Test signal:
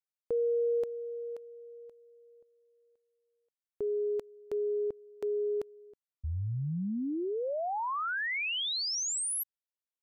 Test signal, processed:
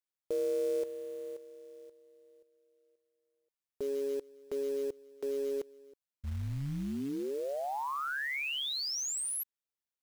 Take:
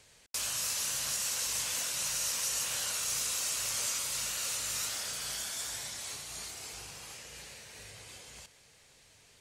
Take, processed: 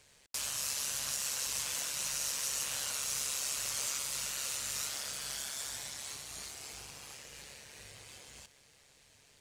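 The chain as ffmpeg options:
-af "tremolo=f=140:d=0.571,acrusher=bits=5:mode=log:mix=0:aa=0.000001"

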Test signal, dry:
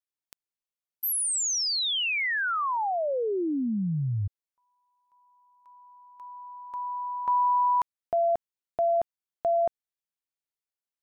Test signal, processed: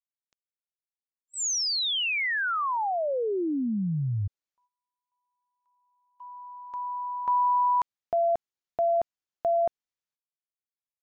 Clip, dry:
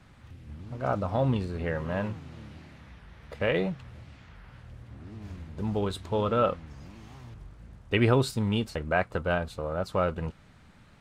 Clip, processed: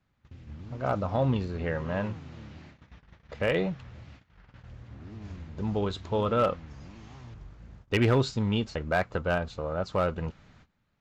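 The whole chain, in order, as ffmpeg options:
-af "aresample=16000,aresample=44100,volume=17dB,asoftclip=hard,volume=-17dB,agate=range=-19dB:threshold=-45dB:ratio=16:release=364:detection=rms"

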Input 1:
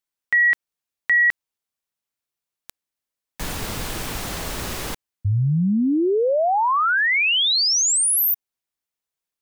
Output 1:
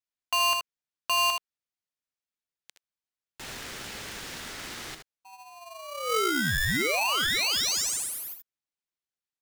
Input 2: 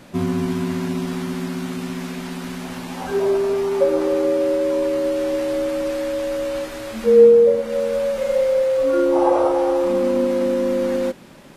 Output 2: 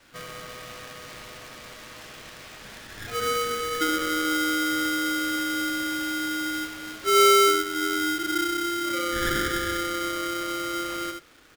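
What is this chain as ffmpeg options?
-filter_complex "[0:a]acrossover=split=430 7800:gain=0.0631 1 0.2[a][b][c];[a][b][c]amix=inputs=3:normalize=0,asplit=2[d][e];[e]aecho=0:1:66|77:0.266|0.335[f];[d][f]amix=inputs=2:normalize=0,asoftclip=type=tanh:threshold=-11dB,adynamicequalizer=threshold=0.0112:dfrequency=420:dqfactor=3.2:tfrequency=420:tqfactor=3.2:attack=5:release=100:ratio=0.375:range=3.5:mode=boostabove:tftype=bell,aeval=exprs='val(0)*sgn(sin(2*PI*870*n/s))':c=same,volume=-7dB"

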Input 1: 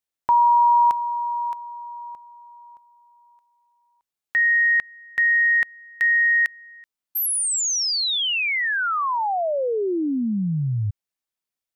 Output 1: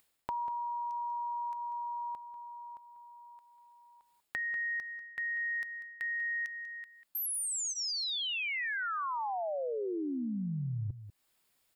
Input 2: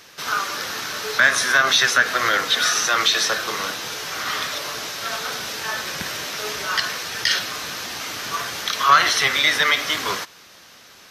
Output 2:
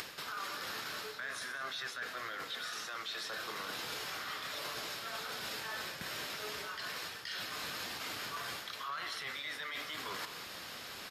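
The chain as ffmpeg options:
-filter_complex "[0:a]bandreject=f=6k:w=6,areverse,acompressor=threshold=-31dB:ratio=16:attack=0.11:release=394:knee=6:detection=peak,areverse,alimiter=level_in=8dB:limit=-24dB:level=0:latency=1:release=100,volume=-8dB,acompressor=mode=upward:threshold=-45dB:ratio=1.5:attack=98:release=191:knee=2.83:detection=peak,asplit=2[a][b];[b]adelay=192.4,volume=-12dB,highshelf=f=4k:g=-4.33[c];[a][c]amix=inputs=2:normalize=0"

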